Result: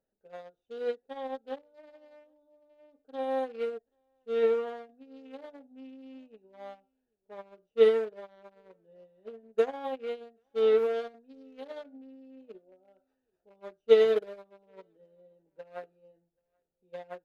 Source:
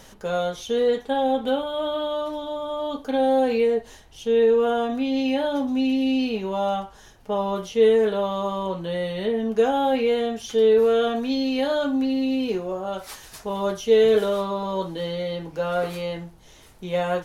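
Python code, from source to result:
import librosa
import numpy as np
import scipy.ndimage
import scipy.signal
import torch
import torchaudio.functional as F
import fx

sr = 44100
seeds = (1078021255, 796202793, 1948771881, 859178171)

p1 = fx.wiener(x, sr, points=41)
p2 = fx.bass_treble(p1, sr, bass_db=-14, treble_db=-5)
p3 = p2 + fx.echo_single(p2, sr, ms=782, db=-23.0, dry=0)
p4 = fx.upward_expand(p3, sr, threshold_db=-35.0, expansion=2.5)
y = p4 * librosa.db_to_amplitude(1.5)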